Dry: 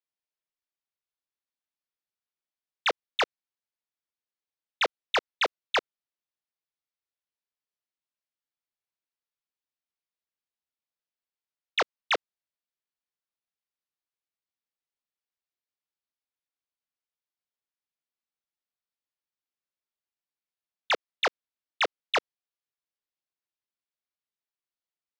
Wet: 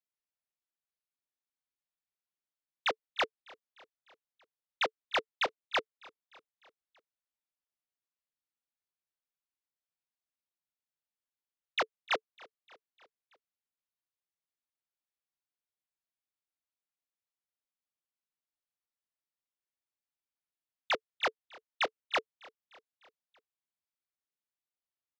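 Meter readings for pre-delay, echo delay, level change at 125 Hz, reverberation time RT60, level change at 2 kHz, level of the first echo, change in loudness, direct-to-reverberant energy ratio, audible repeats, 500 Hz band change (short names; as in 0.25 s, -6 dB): none, 0.301 s, n/a, none, -5.0 dB, -23.5 dB, -5.0 dB, none, 3, -5.5 dB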